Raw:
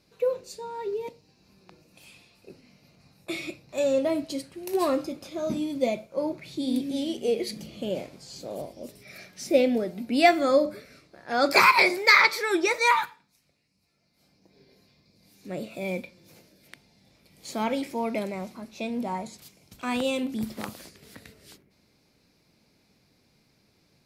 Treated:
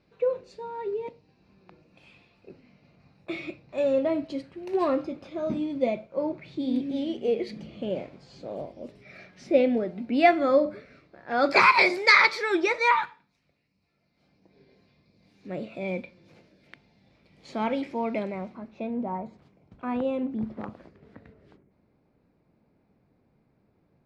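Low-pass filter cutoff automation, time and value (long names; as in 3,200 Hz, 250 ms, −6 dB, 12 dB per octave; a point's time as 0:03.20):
0:11.31 2,600 Hz
0:11.98 6,400 Hz
0:12.93 3,000 Hz
0:18.16 3,000 Hz
0:19.04 1,200 Hz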